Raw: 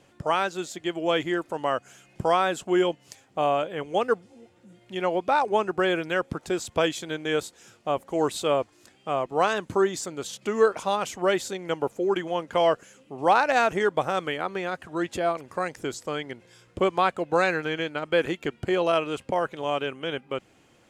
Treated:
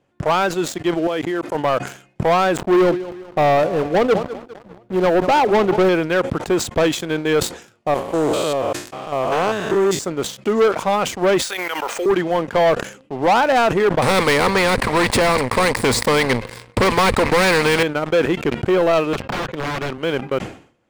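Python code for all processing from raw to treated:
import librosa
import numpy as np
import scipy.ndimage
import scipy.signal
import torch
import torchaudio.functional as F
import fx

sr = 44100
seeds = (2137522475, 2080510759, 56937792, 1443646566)

y = fx.chain(x, sr, fx.highpass(hz=160.0, slope=12),
    fx.level_steps(step_db=16), at=(1.07, 1.55))
y = fx.chain(y, sr, fx.median_filter(points=25),
    fx.leveller(passes=1),
    fx.echo_feedback(ms=200, feedback_pct=52, wet_db=-19.0), at=(2.57, 5.89))
y = fx.chain(y, sr, fx.spec_steps(hold_ms=200),
    fx.high_shelf(hz=3400.0, db=10.5), at=(7.94, 9.99))
y = fx.chain(y, sr, fx.highpass(hz=1400.0, slope=12),
    fx.resample_bad(factor=3, down='filtered', up='hold'),
    fx.env_flatten(amount_pct=100), at=(11.42, 12.06))
y = fx.chain(y, sr, fx.leveller(passes=3),
    fx.ripple_eq(per_octave=0.94, db=12),
    fx.spectral_comp(ratio=2.0), at=(14.02, 17.83))
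y = fx.chain(y, sr, fx.overflow_wrap(gain_db=25.5),
    fx.air_absorb(metres=130.0),
    fx.band_squash(depth_pct=40), at=(19.13, 19.98))
y = fx.high_shelf(y, sr, hz=2900.0, db=-11.0)
y = fx.leveller(y, sr, passes=3)
y = fx.sustainer(y, sr, db_per_s=120.0)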